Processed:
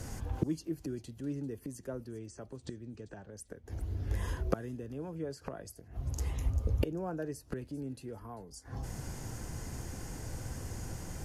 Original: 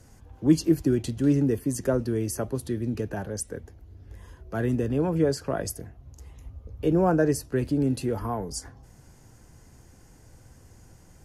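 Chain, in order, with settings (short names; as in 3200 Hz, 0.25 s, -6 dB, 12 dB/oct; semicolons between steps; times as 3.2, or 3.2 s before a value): 2.08–3.33 elliptic low-pass 8300 Hz; flipped gate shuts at -27 dBFS, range -27 dB; thin delay 0.394 s, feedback 36%, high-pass 4200 Hz, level -15 dB; gain +11 dB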